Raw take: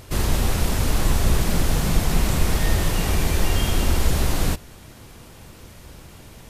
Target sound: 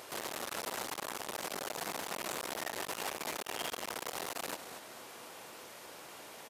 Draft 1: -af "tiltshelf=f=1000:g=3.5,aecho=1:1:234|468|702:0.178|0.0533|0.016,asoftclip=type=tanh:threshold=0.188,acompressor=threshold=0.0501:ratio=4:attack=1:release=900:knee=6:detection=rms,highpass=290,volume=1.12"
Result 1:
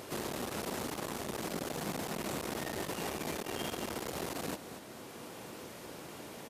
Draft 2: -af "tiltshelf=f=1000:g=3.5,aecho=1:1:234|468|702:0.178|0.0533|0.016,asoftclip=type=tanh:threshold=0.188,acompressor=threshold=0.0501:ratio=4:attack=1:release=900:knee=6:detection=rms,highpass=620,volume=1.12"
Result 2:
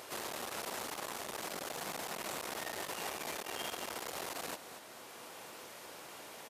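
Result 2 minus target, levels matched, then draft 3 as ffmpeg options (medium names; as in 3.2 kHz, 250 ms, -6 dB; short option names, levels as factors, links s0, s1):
saturation: distortion -5 dB
-af "tiltshelf=f=1000:g=3.5,aecho=1:1:234|468|702:0.178|0.0533|0.016,asoftclip=type=tanh:threshold=0.075,acompressor=threshold=0.0501:ratio=4:attack=1:release=900:knee=6:detection=rms,highpass=620,volume=1.12"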